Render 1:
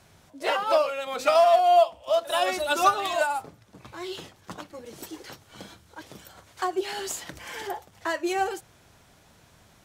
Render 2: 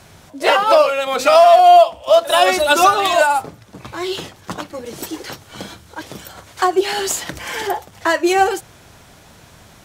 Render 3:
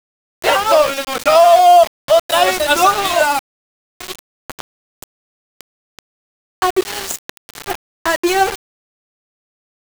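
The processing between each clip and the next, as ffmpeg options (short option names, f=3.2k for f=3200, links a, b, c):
-af "alimiter=level_in=13dB:limit=-1dB:release=50:level=0:latency=1,volume=-1dB"
-af "aeval=exprs='val(0)*gte(abs(val(0)),0.141)':c=same"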